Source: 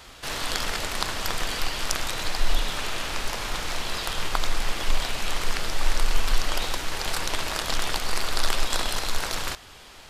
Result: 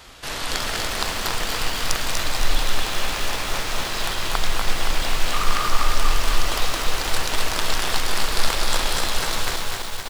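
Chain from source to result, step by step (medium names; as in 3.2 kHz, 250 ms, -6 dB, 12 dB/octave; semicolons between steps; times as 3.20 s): 5.33–5.86 s: peaking EQ 1.2 kHz +14.5 dB 0.28 oct; delay 242 ms -4.5 dB; bit-crushed delay 260 ms, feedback 80%, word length 6-bit, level -7 dB; trim +1.5 dB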